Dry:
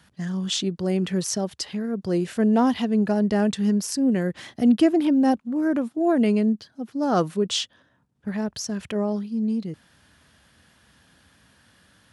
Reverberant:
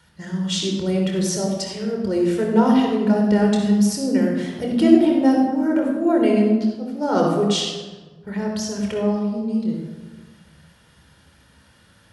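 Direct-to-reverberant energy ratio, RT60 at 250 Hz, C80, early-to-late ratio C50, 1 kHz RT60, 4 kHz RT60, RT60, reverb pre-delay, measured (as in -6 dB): 0.0 dB, 1.7 s, 4.0 dB, 1.5 dB, 1.3 s, 0.80 s, 1.3 s, 26 ms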